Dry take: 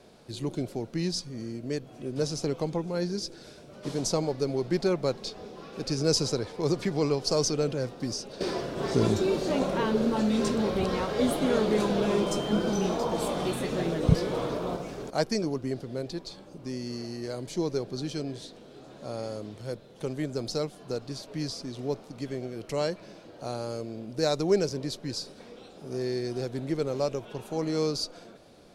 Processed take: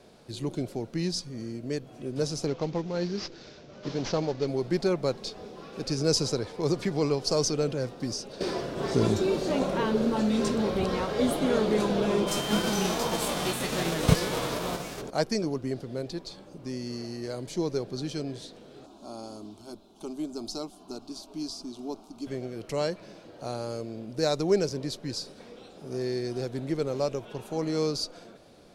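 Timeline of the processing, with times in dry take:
0:02.47–0:04.48: variable-slope delta modulation 32 kbit/s
0:12.27–0:15.00: spectral envelope flattened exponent 0.6
0:18.86–0:22.27: phaser with its sweep stopped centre 500 Hz, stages 6

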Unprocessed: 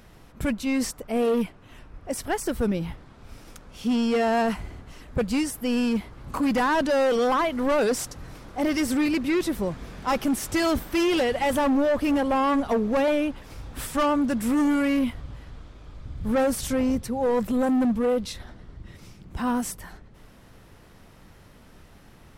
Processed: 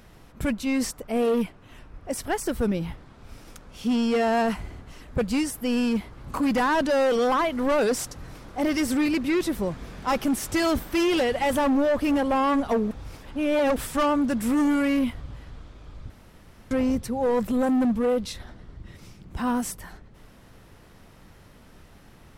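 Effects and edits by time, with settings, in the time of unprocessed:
0:12.91–0:13.76: reverse
0:16.10–0:16.71: fill with room tone

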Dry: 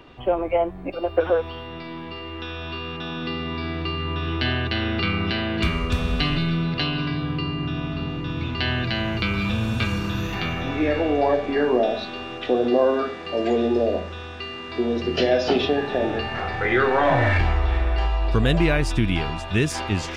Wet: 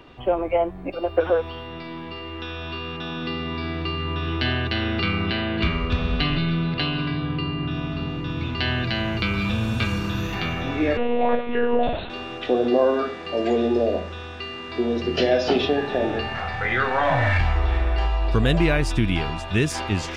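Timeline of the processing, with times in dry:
0:05.26–0:07.71: low-pass filter 4,600 Hz 24 dB per octave
0:10.97–0:12.10: one-pitch LPC vocoder at 8 kHz 240 Hz
0:16.33–0:17.56: parametric band 360 Hz −11 dB

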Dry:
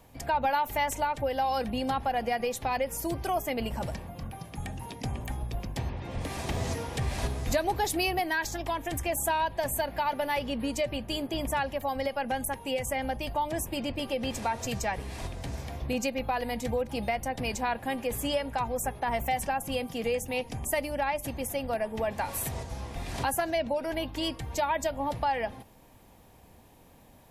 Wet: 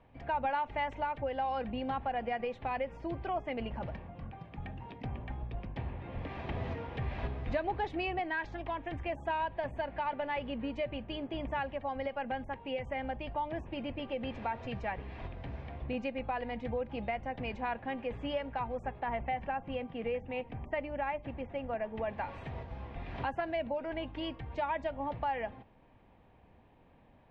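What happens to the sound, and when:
0:19.06–0:21.81: low-pass filter 3,100 Hz
whole clip: low-pass filter 2,900 Hz 24 dB per octave; level −5.5 dB

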